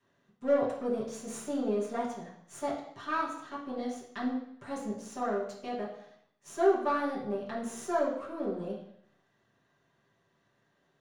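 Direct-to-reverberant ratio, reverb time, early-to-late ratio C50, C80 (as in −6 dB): −9.0 dB, 0.70 s, 4.5 dB, 8.5 dB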